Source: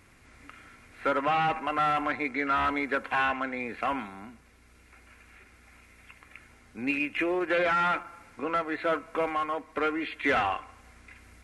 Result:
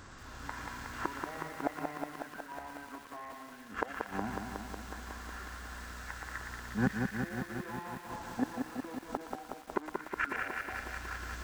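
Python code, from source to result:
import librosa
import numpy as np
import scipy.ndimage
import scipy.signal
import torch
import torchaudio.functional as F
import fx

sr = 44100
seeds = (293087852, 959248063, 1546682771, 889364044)

p1 = fx.gate_flip(x, sr, shuts_db=-24.0, range_db=-27)
p2 = fx.formant_shift(p1, sr, semitones=-6)
p3 = p2 + fx.echo_wet_highpass(p2, sr, ms=117, feedback_pct=73, hz=1800.0, wet_db=-3.5, dry=0)
p4 = fx.echo_crushed(p3, sr, ms=183, feedback_pct=80, bits=10, wet_db=-4.0)
y = p4 * librosa.db_to_amplitude(7.0)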